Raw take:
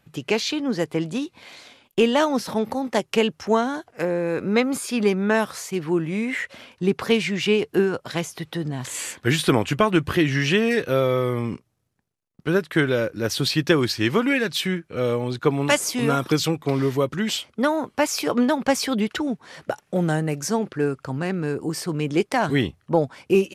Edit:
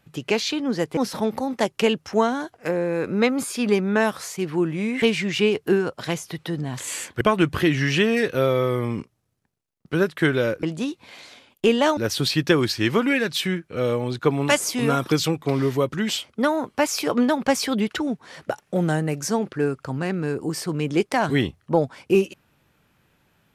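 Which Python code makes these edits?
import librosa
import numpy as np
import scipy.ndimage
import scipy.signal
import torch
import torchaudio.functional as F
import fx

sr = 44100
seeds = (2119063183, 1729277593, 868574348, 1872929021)

y = fx.edit(x, sr, fx.move(start_s=0.97, length_s=1.34, to_s=13.17),
    fx.cut(start_s=6.36, length_s=0.73),
    fx.cut(start_s=9.28, length_s=0.47), tone=tone)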